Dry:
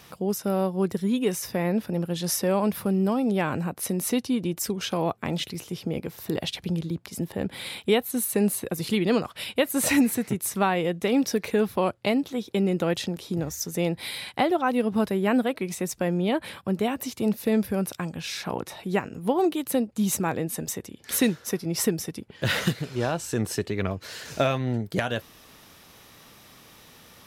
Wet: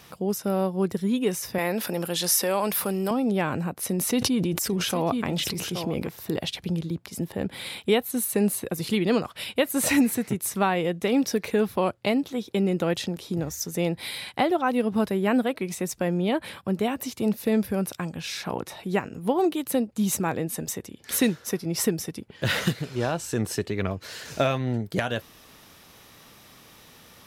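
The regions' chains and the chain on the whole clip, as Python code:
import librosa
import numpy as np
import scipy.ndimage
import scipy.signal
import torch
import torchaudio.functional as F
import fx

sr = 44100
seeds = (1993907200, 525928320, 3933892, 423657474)

y = fx.chain(x, sr, fx.highpass(hz=740.0, slope=6),
    fx.high_shelf(hz=6400.0, db=7.0),
    fx.env_flatten(amount_pct=50), at=(1.58, 3.11))
y = fx.chain(y, sr, fx.echo_single(ms=824, db=-13.5),
    fx.sustainer(db_per_s=25.0), at=(3.87, 6.09))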